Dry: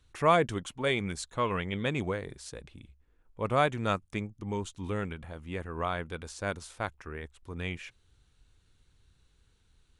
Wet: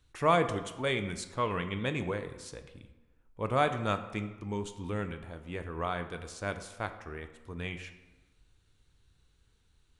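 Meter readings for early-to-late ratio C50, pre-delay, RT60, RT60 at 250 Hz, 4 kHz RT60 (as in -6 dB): 11.0 dB, 4 ms, 1.2 s, 1.1 s, 0.70 s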